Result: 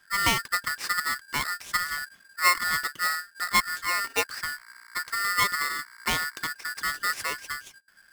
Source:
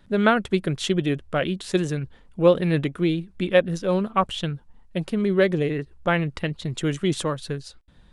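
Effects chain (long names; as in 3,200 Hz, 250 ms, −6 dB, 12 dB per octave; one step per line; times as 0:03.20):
0:04.41–0:06.38: hum with harmonics 60 Hz, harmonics 11, −47 dBFS −2 dB per octave
ring modulator with a square carrier 1,600 Hz
level −5.5 dB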